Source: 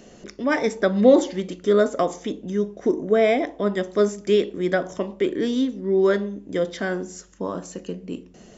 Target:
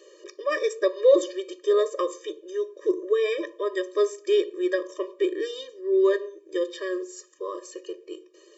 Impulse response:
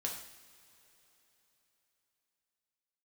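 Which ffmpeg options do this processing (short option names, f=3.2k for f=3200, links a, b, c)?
-af "asubboost=boost=6:cutoff=190,afftfilt=real='re*eq(mod(floor(b*sr/1024/320),2),1)':imag='im*eq(mod(floor(b*sr/1024/320),2),1)':win_size=1024:overlap=0.75"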